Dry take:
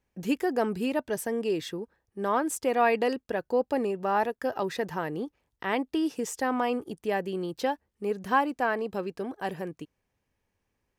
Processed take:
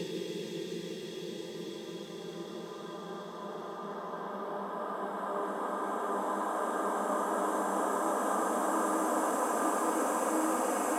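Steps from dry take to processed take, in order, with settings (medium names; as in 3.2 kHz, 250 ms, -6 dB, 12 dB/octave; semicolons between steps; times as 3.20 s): Paulstretch 15×, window 1.00 s, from 1.76 s; hum notches 50/100/150/200/250/300/350/400 Hz; trim -2.5 dB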